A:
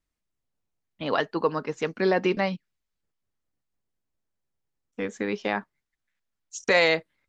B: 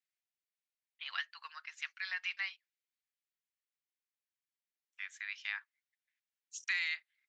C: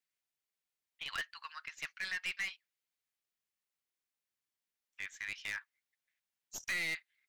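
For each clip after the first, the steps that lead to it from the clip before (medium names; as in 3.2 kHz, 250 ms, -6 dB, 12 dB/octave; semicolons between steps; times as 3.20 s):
inverse Chebyshev high-pass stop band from 420 Hz, stop band 70 dB; treble shelf 3.1 kHz -11.5 dB; compression, threshold -32 dBFS, peak gain reduction 7.5 dB; trim +1 dB
tracing distortion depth 0.037 ms; overload inside the chain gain 34 dB; trim +2 dB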